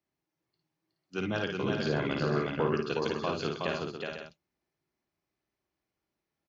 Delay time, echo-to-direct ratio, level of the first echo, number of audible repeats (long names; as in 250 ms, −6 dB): 54 ms, 1.0 dB, −4.5 dB, 6